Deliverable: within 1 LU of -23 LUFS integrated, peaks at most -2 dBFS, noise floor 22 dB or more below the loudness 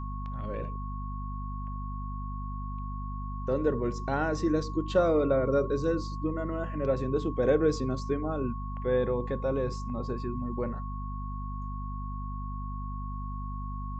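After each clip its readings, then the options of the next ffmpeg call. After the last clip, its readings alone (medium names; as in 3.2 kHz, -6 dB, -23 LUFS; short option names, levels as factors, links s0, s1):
hum 50 Hz; highest harmonic 250 Hz; hum level -33 dBFS; steady tone 1.1 kHz; tone level -41 dBFS; loudness -31.5 LUFS; peak level -12.0 dBFS; loudness target -23.0 LUFS
-> -af "bandreject=f=50:t=h:w=6,bandreject=f=100:t=h:w=6,bandreject=f=150:t=h:w=6,bandreject=f=200:t=h:w=6,bandreject=f=250:t=h:w=6"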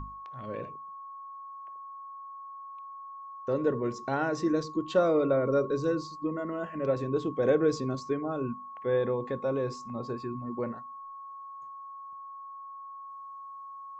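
hum not found; steady tone 1.1 kHz; tone level -41 dBFS
-> -af "bandreject=f=1100:w=30"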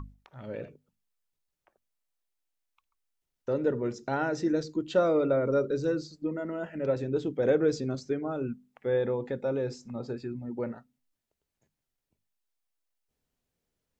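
steady tone not found; loudness -30.0 LUFS; peak level -13.0 dBFS; loudness target -23.0 LUFS
-> -af "volume=2.24"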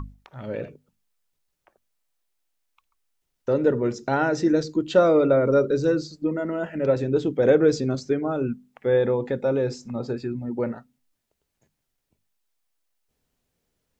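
loudness -23.0 LUFS; peak level -6.0 dBFS; noise floor -79 dBFS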